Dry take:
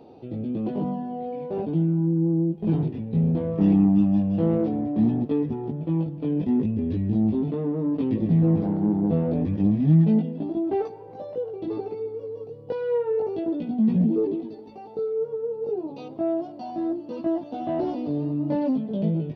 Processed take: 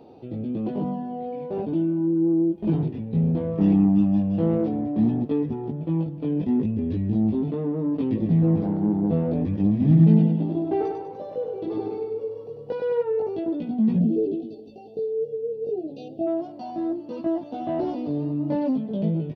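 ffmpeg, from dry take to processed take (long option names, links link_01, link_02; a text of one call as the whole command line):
ffmpeg -i in.wav -filter_complex "[0:a]asettb=1/sr,asplit=3[link_01][link_02][link_03];[link_01]atrim=end=1.724[link_04];[link_02]atrim=start=1.72:end=2.7,asetpts=PTS-STARTPTS,afade=type=in:duration=0.004:curve=qsin,afade=type=out:start_time=0.976:duration=0.004:curve=qsin,aecho=1:1:3.3:0.7,atrim=end_sample=43218[link_05];[link_03]atrim=start=2.696[link_06];[link_04][link_05]acrossfade=duration=0.004:curve1=hsin:curve2=qsin[link_07];[link_07][link_06]acrossfade=duration=0.004:curve1=qsin:curve2=hsin,asplit=3[link_08][link_09][link_10];[link_08]afade=type=out:start_time=9.8:duration=0.02[link_11];[link_09]aecho=1:1:98|196|294|392|490|588|686:0.596|0.304|0.155|0.079|0.0403|0.0206|0.0105,afade=type=in:start_time=9.8:duration=0.02,afade=type=out:start_time=13.02:duration=0.02[link_12];[link_10]afade=type=in:start_time=13.02:duration=0.02[link_13];[link_11][link_12][link_13]amix=inputs=3:normalize=0,asplit=3[link_14][link_15][link_16];[link_14]afade=type=out:start_time=13.99:duration=0.02[link_17];[link_15]asuperstop=centerf=1400:order=20:qfactor=0.77,afade=type=in:start_time=13.99:duration=0.02,afade=type=out:start_time=16.26:duration=0.02[link_18];[link_16]afade=type=in:start_time=16.26:duration=0.02[link_19];[link_17][link_18][link_19]amix=inputs=3:normalize=0" out.wav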